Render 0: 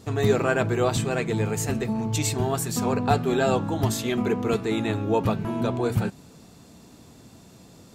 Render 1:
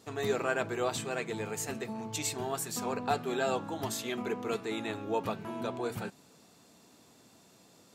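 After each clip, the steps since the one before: high-pass 440 Hz 6 dB/octave; trim -6 dB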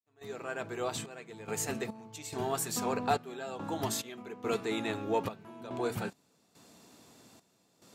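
fade-in on the opening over 1.50 s; trance gate ".xxxx..xx." 71 bpm -12 dB; in parallel at -11.5 dB: overload inside the chain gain 28.5 dB

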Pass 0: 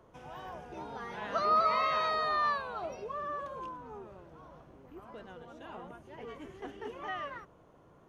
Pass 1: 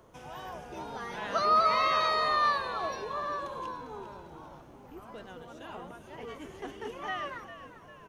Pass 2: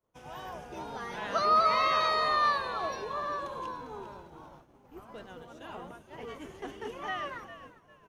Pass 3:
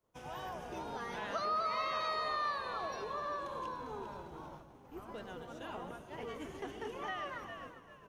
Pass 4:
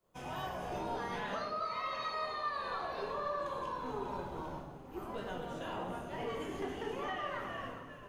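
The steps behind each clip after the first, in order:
treble shelf 4.1 kHz +9.5 dB; on a send: frequency-shifting echo 400 ms, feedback 52%, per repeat -79 Hz, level -12 dB; on the sum: trim +2 dB
expander -44 dBFS
compression 2:1, threshold -43 dBFS, peak gain reduction 12 dB; echo whose repeats swap between lows and highs 126 ms, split 900 Hz, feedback 51%, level -9 dB; trim +1 dB
band-stop 5.7 kHz, Q 16; compression, threshold -41 dBFS, peak gain reduction 9.5 dB; simulated room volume 170 m³, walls mixed, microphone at 1.1 m; trim +2 dB

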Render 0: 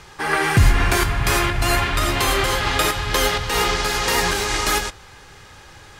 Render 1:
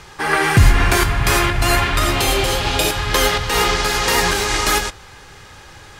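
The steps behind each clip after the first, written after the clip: spectral replace 2.16–2.92 s, 880–2200 Hz; trim +3 dB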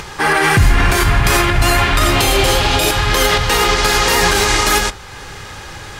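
peak limiter -9.5 dBFS, peak gain reduction 8 dB; upward compressor, threshold -31 dBFS; reverberation RT60 0.30 s, pre-delay 22 ms, DRR 17.5 dB; trim +6 dB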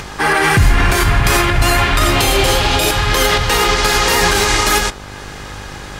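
mains buzz 50 Hz, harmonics 36, -34 dBFS -4 dB/octave

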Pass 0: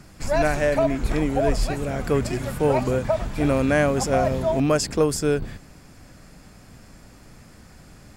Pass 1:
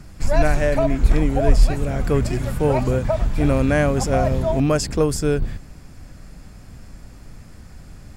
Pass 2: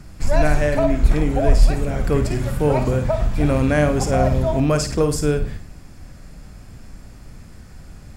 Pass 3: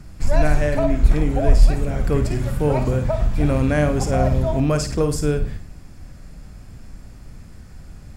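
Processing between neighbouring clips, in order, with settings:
bass shelf 110 Hz +12 dB
flutter echo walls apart 9.2 m, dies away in 0.36 s
bass shelf 200 Hz +3.5 dB; trim -2.5 dB

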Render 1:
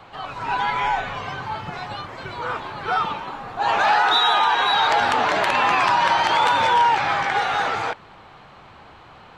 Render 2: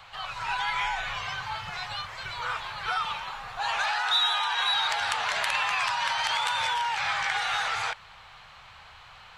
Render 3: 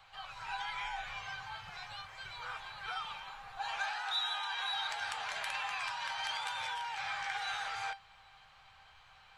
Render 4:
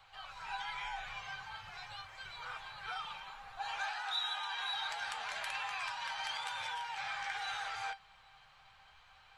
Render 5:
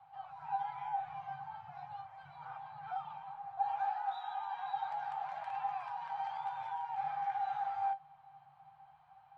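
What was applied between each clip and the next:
dynamic bell 9.4 kHz, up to +5 dB, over -50 dBFS, Q 2; compression, threshold -21 dBFS, peak gain reduction 7.5 dB; amplifier tone stack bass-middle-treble 10-0-10; trim +4.5 dB
feedback comb 790 Hz, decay 0.2 s, harmonics all, mix 80%; trim +1 dB
flange 0.53 Hz, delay 2 ms, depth 5.3 ms, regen -61%; trim +2.5 dB
two resonant band-passes 340 Hz, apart 2.4 oct; trim +9.5 dB

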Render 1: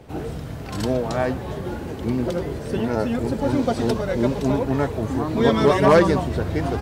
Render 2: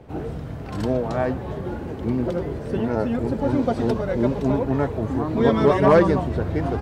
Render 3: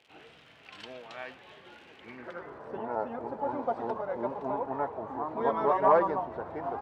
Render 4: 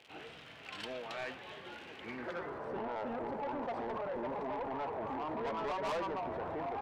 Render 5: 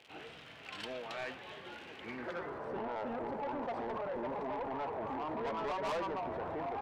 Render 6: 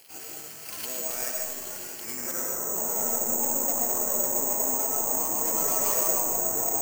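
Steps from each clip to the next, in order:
treble shelf 3 kHz -11.5 dB
crackle 110 per s -37 dBFS; band-pass sweep 2.8 kHz -> 900 Hz, 1.93–2.74 s
in parallel at -1 dB: compressor with a negative ratio -39 dBFS, ratio -1; on the sum: saturation -28.5 dBFS, distortion -7 dB; trim -5 dB
no audible change
algorithmic reverb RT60 1 s, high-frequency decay 0.25×, pre-delay 75 ms, DRR 0 dB; careless resampling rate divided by 6×, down filtered, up zero stuff

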